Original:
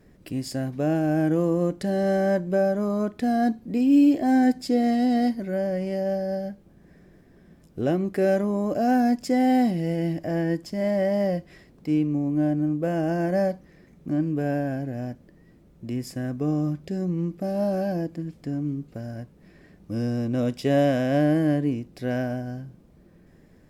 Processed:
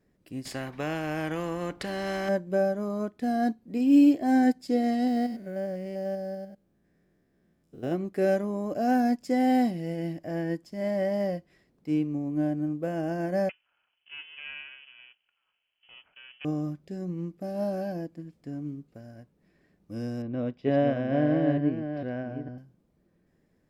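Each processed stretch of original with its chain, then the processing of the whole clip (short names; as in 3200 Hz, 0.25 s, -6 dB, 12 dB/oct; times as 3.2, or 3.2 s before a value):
0.45–2.29 tone controls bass +1 dB, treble -14 dB + spectral compressor 2:1
5.07–7.92 stepped spectrum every 0.1 s + bell 950 Hz -3 dB 0.29 oct + companded quantiser 8-bit
13.49–16.45 minimum comb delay 1.2 ms + HPF 800 Hz 6 dB/oct + inverted band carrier 3200 Hz
20.22–22.58 reverse delay 0.453 s, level -6 dB + air absorption 310 m
whole clip: low shelf 110 Hz -5.5 dB; upward expander 1.5:1, over -41 dBFS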